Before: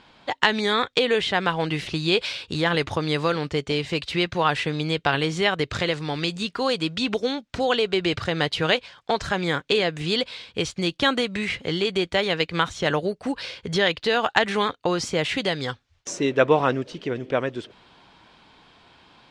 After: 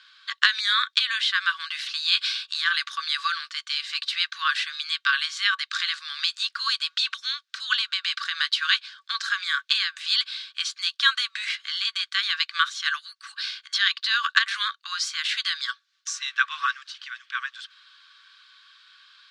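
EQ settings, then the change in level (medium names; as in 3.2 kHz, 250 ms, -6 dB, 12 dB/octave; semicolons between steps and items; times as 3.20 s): rippled Chebyshev high-pass 1.1 kHz, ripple 9 dB; +6.5 dB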